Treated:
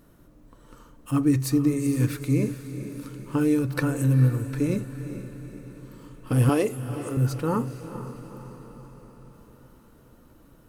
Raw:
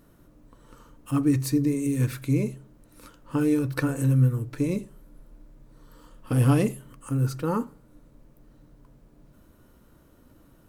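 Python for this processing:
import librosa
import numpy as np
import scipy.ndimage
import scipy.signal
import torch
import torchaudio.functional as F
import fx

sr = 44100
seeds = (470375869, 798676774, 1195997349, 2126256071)

y = fx.low_shelf_res(x, sr, hz=240.0, db=-14.0, q=1.5, at=(6.49, 7.17))
y = fx.echo_diffused(y, sr, ms=452, feedback_pct=55, wet_db=-11.5)
y = y * librosa.db_to_amplitude(1.0)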